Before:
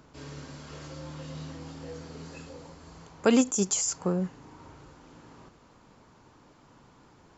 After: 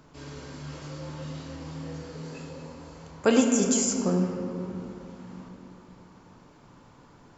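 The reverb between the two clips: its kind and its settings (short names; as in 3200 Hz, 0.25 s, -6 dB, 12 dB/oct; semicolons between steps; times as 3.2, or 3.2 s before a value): shoebox room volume 120 m³, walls hard, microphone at 0.33 m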